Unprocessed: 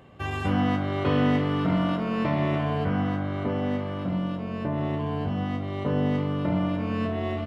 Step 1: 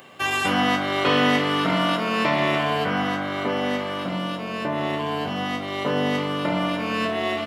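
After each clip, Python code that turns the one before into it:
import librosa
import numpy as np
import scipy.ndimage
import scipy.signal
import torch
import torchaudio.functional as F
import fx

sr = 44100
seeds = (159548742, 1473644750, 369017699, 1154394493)

y = scipy.signal.sosfilt(scipy.signal.butter(2, 140.0, 'highpass', fs=sr, output='sos'), x)
y = fx.tilt_eq(y, sr, slope=3.5)
y = y * librosa.db_to_amplitude(8.0)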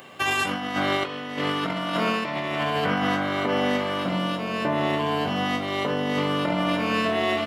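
y = fx.over_compress(x, sr, threshold_db=-24.0, ratio=-0.5)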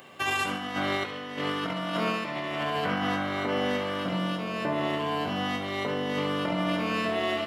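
y = fx.echo_feedback(x, sr, ms=71, feedback_pct=48, wet_db=-11.0)
y = y * librosa.db_to_amplitude(-4.5)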